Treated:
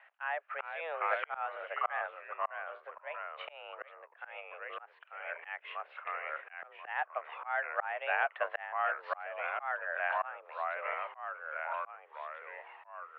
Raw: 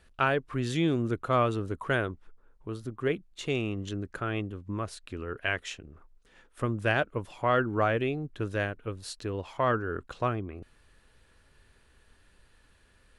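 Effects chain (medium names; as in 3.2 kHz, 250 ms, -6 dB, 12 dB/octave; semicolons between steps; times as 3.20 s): ever faster or slower copies 377 ms, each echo -2 st, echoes 3, each echo -6 dB; mistuned SSB +160 Hz 550–2400 Hz; slow attack 643 ms; trim +8 dB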